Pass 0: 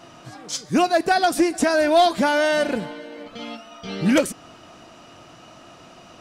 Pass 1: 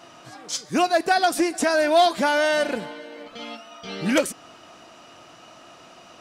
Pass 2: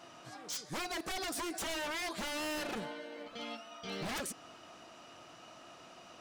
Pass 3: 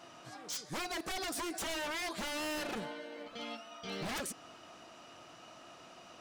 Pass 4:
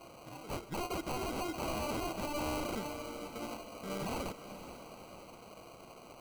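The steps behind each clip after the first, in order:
low-shelf EQ 240 Hz −10 dB
downward compressor 6 to 1, threshold −20 dBFS, peak gain reduction 7.5 dB; wave folding −26 dBFS; level −7 dB
no processing that can be heard
decimation without filtering 25×; feedback delay with all-pass diffusion 507 ms, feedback 48%, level −12 dB; level +1 dB

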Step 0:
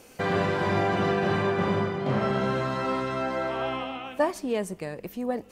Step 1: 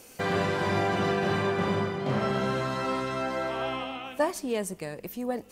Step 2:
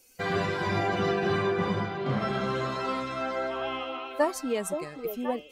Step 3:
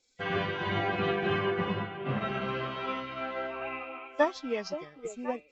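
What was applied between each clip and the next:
high-shelf EQ 4,600 Hz +8.5 dB; level −2 dB
spectral dynamics exaggerated over time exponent 1.5; on a send: echo through a band-pass that steps 525 ms, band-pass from 430 Hz, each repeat 1.4 octaves, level −4 dB; on the sum: level +2 dB
hearing-aid frequency compression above 1,900 Hz 1.5 to 1; dynamic equaliser 2,800 Hz, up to +6 dB, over −48 dBFS, Q 1.1; expander for the loud parts 1.5 to 1, over −43 dBFS

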